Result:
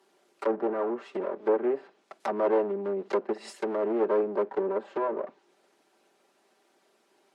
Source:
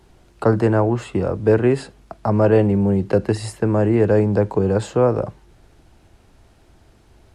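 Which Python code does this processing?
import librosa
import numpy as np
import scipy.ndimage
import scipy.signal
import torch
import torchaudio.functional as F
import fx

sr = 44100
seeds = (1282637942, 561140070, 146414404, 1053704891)

y = fx.lower_of_two(x, sr, delay_ms=5.1)
y = scipy.signal.sosfilt(scipy.signal.butter(4, 300.0, 'highpass', fs=sr, output='sos'), y)
y = fx.env_lowpass_down(y, sr, base_hz=1300.0, full_db=-18.5)
y = fx.high_shelf(y, sr, hz=3700.0, db=11.5, at=(2.2, 4.61))
y = y * librosa.db_to_amplitude(-8.0)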